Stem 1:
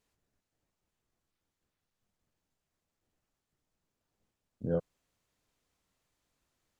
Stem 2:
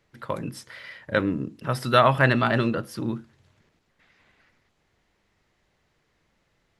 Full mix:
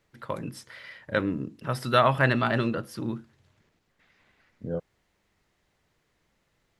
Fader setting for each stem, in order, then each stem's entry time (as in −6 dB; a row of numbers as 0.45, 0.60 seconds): −0.5, −3.0 decibels; 0.00, 0.00 seconds